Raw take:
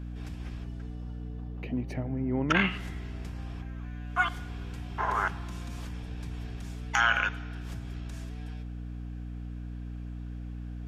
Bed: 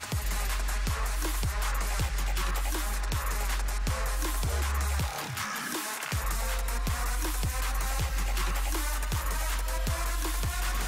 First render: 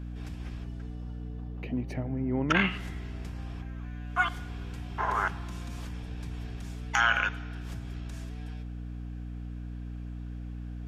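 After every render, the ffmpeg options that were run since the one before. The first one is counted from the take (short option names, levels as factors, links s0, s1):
-af anull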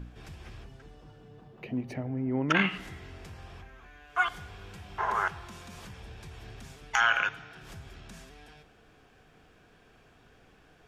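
-af "bandreject=f=60:t=h:w=4,bandreject=f=120:t=h:w=4,bandreject=f=180:t=h:w=4,bandreject=f=240:t=h:w=4,bandreject=f=300:t=h:w=4"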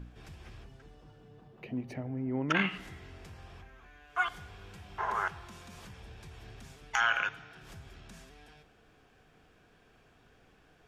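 -af "volume=0.668"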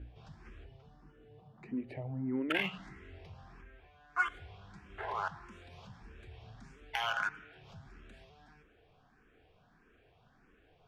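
-filter_complex "[0:a]adynamicsmooth=sensitivity=8:basefreq=4400,asplit=2[s0][s1];[s1]afreqshift=1.6[s2];[s0][s2]amix=inputs=2:normalize=1"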